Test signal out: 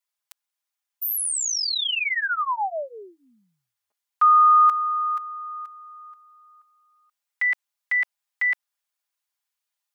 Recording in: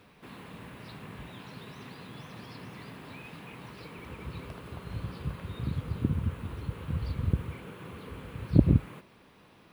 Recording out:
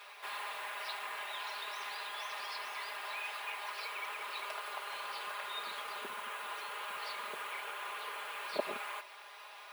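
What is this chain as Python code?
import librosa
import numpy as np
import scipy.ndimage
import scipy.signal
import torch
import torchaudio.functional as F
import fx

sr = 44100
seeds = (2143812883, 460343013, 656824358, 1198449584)

p1 = scipy.signal.sosfilt(scipy.signal.butter(4, 690.0, 'highpass', fs=sr, output='sos'), x)
p2 = p1 + 0.94 * np.pad(p1, (int(4.9 * sr / 1000.0), 0))[:len(p1)]
p3 = fx.rider(p2, sr, range_db=4, speed_s=2.0)
y = p2 + (p3 * 10.0 ** (0.0 / 20.0))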